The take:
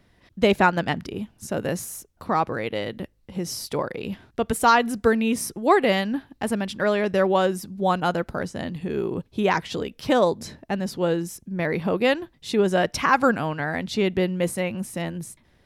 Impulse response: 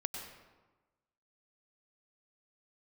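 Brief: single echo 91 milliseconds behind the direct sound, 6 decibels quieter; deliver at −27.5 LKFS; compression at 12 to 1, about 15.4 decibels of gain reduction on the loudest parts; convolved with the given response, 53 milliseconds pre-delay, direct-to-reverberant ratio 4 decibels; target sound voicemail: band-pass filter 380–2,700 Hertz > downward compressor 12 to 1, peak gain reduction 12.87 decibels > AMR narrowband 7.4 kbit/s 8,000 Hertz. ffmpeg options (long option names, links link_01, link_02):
-filter_complex "[0:a]acompressor=threshold=-28dB:ratio=12,aecho=1:1:91:0.501,asplit=2[link_01][link_02];[1:a]atrim=start_sample=2205,adelay=53[link_03];[link_02][link_03]afir=irnorm=-1:irlink=0,volume=-5dB[link_04];[link_01][link_04]amix=inputs=2:normalize=0,highpass=380,lowpass=2700,acompressor=threshold=-38dB:ratio=12,volume=16.5dB" -ar 8000 -c:a libopencore_amrnb -b:a 7400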